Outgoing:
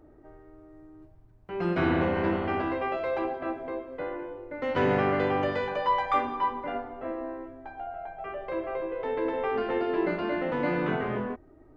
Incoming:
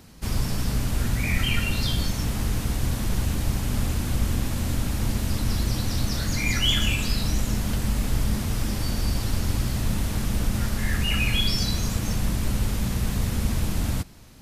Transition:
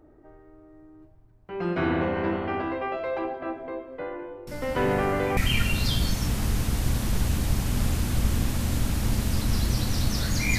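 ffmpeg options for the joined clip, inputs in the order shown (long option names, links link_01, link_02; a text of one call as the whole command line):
ffmpeg -i cue0.wav -i cue1.wav -filter_complex "[1:a]asplit=2[link_01][link_02];[0:a]apad=whole_dur=10.58,atrim=end=10.58,atrim=end=5.372[link_03];[link_02]atrim=start=1.338:end=6.55[link_04];[link_01]atrim=start=0.44:end=1.34,asetpts=PTS-STARTPTS,volume=-12.5dB,afade=type=in:duration=0.004:curve=hsin,afade=type=out:start_time=0.896:duration=0.004:curve=hsin,adelay=4470[link_05];[link_03][link_04]acrossfade=duration=0.004:curve1=hsin:curve2=hsin[link_06];[link_06][link_05]amix=inputs=2:normalize=0" out.wav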